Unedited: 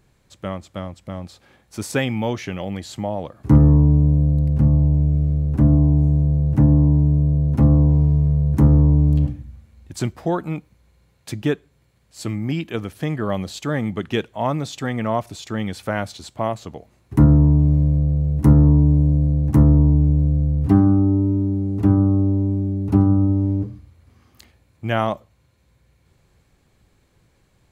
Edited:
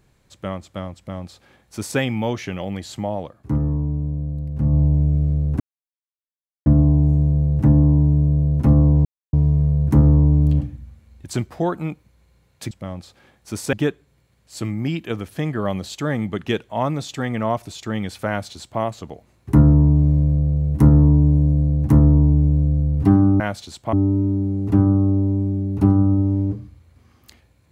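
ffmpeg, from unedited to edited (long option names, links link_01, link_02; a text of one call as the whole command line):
ffmpeg -i in.wav -filter_complex "[0:a]asplit=9[link_01][link_02][link_03][link_04][link_05][link_06][link_07][link_08][link_09];[link_01]atrim=end=3.42,asetpts=PTS-STARTPTS,afade=type=out:start_time=3.17:duration=0.25:silence=0.354813[link_10];[link_02]atrim=start=3.42:end=4.54,asetpts=PTS-STARTPTS,volume=-9dB[link_11];[link_03]atrim=start=4.54:end=5.6,asetpts=PTS-STARTPTS,afade=type=in:duration=0.25:silence=0.354813,afade=type=out:start_time=1.056:duration=0.004:curve=hsin,apad=pad_dur=1.06[link_12];[link_04]atrim=start=5.6:end=7.99,asetpts=PTS-STARTPTS,afade=type=in:duration=0.004:curve=hsin,afade=type=out:start_time=2.386:duration=0.004:curve=hsin,apad=pad_dur=0.28[link_13];[link_05]atrim=start=7.99:end=11.372,asetpts=PTS-STARTPTS,afade=type=in:duration=0.004:curve=hsin[link_14];[link_06]atrim=start=0.968:end=1.992[link_15];[link_07]atrim=start=11.368:end=21.042[link_16];[link_08]atrim=start=15.918:end=16.452[link_17];[link_09]atrim=start=21.038[link_18];[link_10][link_11][link_12][link_13][link_14]concat=n=5:v=0:a=1[link_19];[link_19][link_15]acrossfade=duration=0.004:curve1=hsin:curve2=hsin[link_20];[link_20][link_16]acrossfade=duration=0.004:curve1=hsin:curve2=hsin[link_21];[link_21][link_17]acrossfade=duration=0.004:curve1=hsin:curve2=hsin[link_22];[link_22][link_18]acrossfade=duration=0.004:curve1=hsin:curve2=hsin" out.wav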